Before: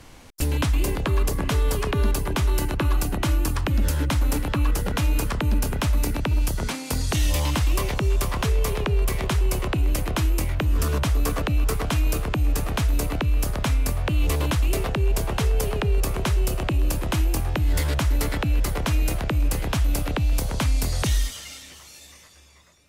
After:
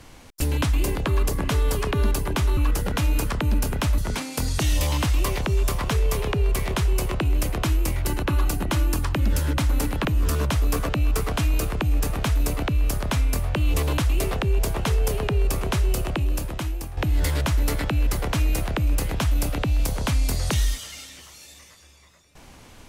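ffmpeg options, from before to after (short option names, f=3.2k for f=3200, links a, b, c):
-filter_complex "[0:a]asplit=6[a][b][c][d][e][f];[a]atrim=end=2.572[g];[b]atrim=start=4.568:end=5.982[h];[c]atrim=start=6.508:end=10.582[i];[d]atrim=start=2.568:end=4.572[j];[e]atrim=start=10.578:end=17.5,asetpts=PTS-STARTPTS,afade=t=out:st=5.972:d=0.95:silence=0.266073[k];[f]atrim=start=17.5,asetpts=PTS-STARTPTS,afade=t=in:d=0.004:c=hsin:silence=0.266073[l];[g][h]acrossfade=d=0.004:c1=hsin:c2=hsin[m];[m][i]acrossfade=d=0.004:c1=hsin:c2=hsin[n];[n][j]acrossfade=d=0.004:c1=hsin:c2=hsin[o];[k][l]concat=n=2:v=0:a=1[p];[o][p]acrossfade=d=0.004:c1=hsin:c2=hsin"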